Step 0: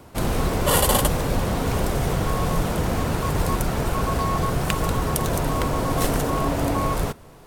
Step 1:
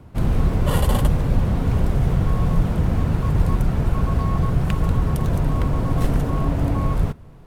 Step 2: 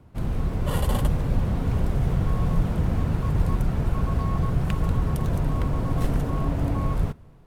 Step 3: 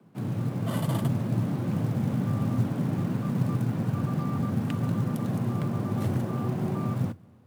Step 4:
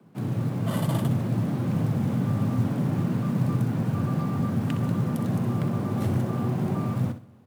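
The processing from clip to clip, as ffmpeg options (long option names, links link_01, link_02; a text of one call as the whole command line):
ffmpeg -i in.wav -af "bass=frequency=250:gain=12,treble=frequency=4000:gain=-8,volume=-5.5dB" out.wav
ffmpeg -i in.wav -af "dynaudnorm=framelen=470:gausssize=3:maxgain=5dB,volume=-7.5dB" out.wav
ffmpeg -i in.wav -af "afreqshift=87,acrusher=bits=8:mode=log:mix=0:aa=0.000001,volume=-5dB" out.wav
ffmpeg -i in.wav -filter_complex "[0:a]asplit=2[link_01][link_02];[link_02]asoftclip=type=hard:threshold=-24dB,volume=-7.5dB[link_03];[link_01][link_03]amix=inputs=2:normalize=0,aecho=1:1:63|126|189:0.282|0.0676|0.0162,volume=-1dB" out.wav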